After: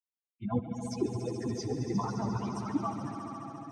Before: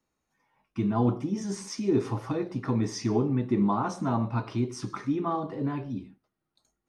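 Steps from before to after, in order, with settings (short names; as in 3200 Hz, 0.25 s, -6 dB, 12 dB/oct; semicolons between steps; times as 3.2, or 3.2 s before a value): per-bin expansion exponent 3; swelling echo 0.131 s, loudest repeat 5, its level -11 dB; plain phase-vocoder stretch 0.54×; gain +3 dB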